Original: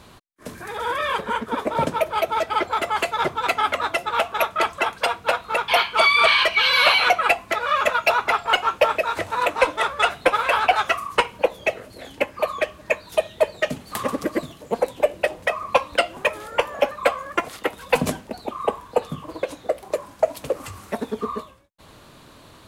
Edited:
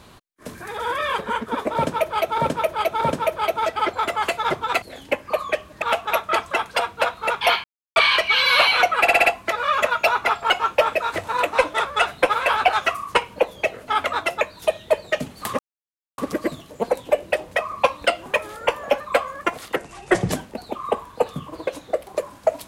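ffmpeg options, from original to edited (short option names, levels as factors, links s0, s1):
-filter_complex "[0:a]asplit=16[s0][s1][s2][s3][s4][s5][s6][s7][s8][s9][s10][s11][s12][s13][s14][s15];[s0]atrim=end=2.382[s16];[s1]atrim=start=1.748:end=2.382[s17];[s2]atrim=start=1.748:end=3.562[s18];[s3]atrim=start=11.908:end=12.912[s19];[s4]atrim=start=4.088:end=5.91,asetpts=PTS-STARTPTS,afade=t=out:st=1.818:d=0.004:c=hsin[s20];[s5]atrim=start=5.91:end=6.23,asetpts=PTS-STARTPTS,volume=0[s21];[s6]atrim=start=6.23:end=7.342,asetpts=PTS-STARTPTS,afade=t=in:d=0.004:c=hsin[s22];[s7]atrim=start=7.278:end=7.342[s23];[s8]atrim=start=7.278:end=7.342[s24];[s9]atrim=start=7.278:end=7.342[s25];[s10]atrim=start=7.278:end=11.912[s26];[s11]atrim=start=3.558:end=4.092[s27];[s12]atrim=start=12.908:end=14.09,asetpts=PTS-STARTPTS,afade=t=out:st=1.178:d=0.004:c=hsin,apad=pad_dur=0.59[s28];[s13]atrim=start=14.09:end=17.674,asetpts=PTS-STARTPTS,afade=t=in:d=0.004:c=hsin[s29];[s14]atrim=start=17.67:end=18.08,asetpts=PTS-STARTPTS,asetrate=32193,aresample=44100,atrim=end_sample=24768,asetpts=PTS-STARTPTS[s30];[s15]atrim=start=18.076[s31];[s16][s17]acrossfade=d=0.004:c1=hsin:c2=hsin[s32];[s32][s18]acrossfade=d=0.004:c1=hsin:c2=hsin[s33];[s33][s19]acrossfade=d=0.004:c1=hsin:c2=hsin[s34];[s20][s21][s22]concat=n=3:v=0:a=1[s35];[s34][s35]acrossfade=d=0.004:c1=hsin:c2=hsin[s36];[s36][s23]acrossfade=d=0.004:c1=hsin:c2=hsin[s37];[s37][s24]acrossfade=d=0.004:c1=hsin:c2=hsin[s38];[s38][s25]acrossfade=d=0.004:c1=hsin:c2=hsin[s39];[s39][s26]acrossfade=d=0.004:c1=hsin:c2=hsin[s40];[s40][s27]acrossfade=d=0.004:c1=hsin:c2=hsin[s41];[s28][s29]concat=n=2:v=0:a=1[s42];[s41][s42]acrossfade=d=0.004:c1=hsin:c2=hsin[s43];[s43][s30]acrossfade=d=0.004:c1=hsin:c2=hsin[s44];[s44][s31]acrossfade=d=0.004:c1=hsin:c2=hsin"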